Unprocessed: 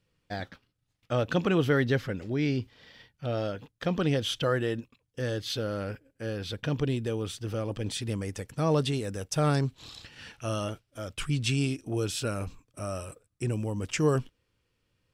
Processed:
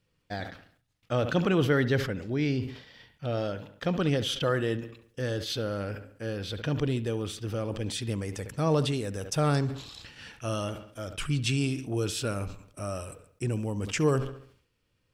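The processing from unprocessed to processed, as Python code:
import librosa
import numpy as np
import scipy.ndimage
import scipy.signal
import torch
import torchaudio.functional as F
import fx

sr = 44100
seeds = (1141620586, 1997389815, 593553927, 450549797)

p1 = x + fx.echo_wet_lowpass(x, sr, ms=69, feedback_pct=40, hz=3400.0, wet_db=-16.0, dry=0)
y = fx.sustainer(p1, sr, db_per_s=100.0)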